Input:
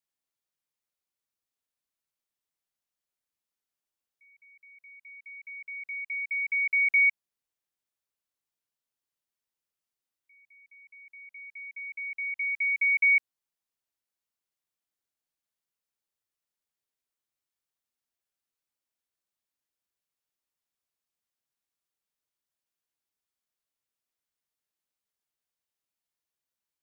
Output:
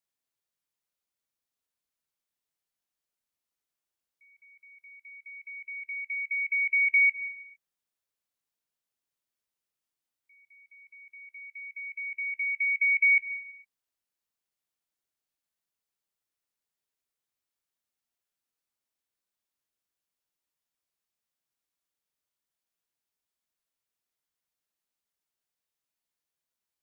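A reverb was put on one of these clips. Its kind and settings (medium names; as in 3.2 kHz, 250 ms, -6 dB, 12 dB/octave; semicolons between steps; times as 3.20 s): gated-style reverb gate 480 ms falling, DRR 12 dB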